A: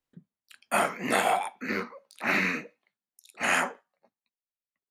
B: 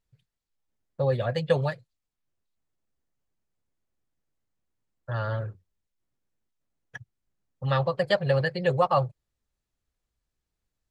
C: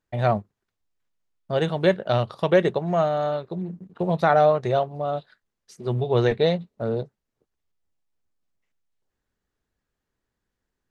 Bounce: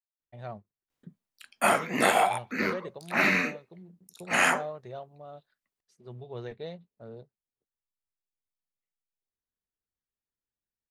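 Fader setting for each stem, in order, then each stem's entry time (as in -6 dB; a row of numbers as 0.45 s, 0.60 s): +2.0 dB, mute, -19.0 dB; 0.90 s, mute, 0.20 s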